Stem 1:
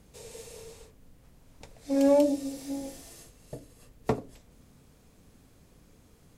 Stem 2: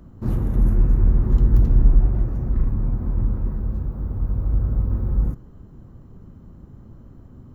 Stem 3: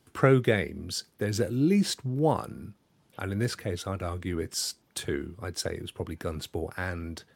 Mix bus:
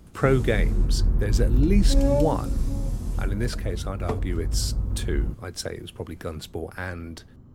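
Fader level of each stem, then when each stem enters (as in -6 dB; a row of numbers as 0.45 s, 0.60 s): -2.0 dB, -5.5 dB, +0.5 dB; 0.00 s, 0.00 s, 0.00 s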